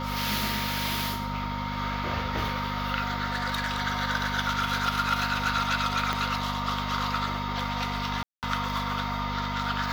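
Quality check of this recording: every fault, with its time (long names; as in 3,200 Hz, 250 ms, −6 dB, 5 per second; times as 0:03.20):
mains hum 50 Hz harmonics 5 −34 dBFS
whistle 930 Hz −35 dBFS
0:03.26–0:03.82: clipping −24 dBFS
0:06.13: click −13 dBFS
0:08.23–0:08.43: drop-out 198 ms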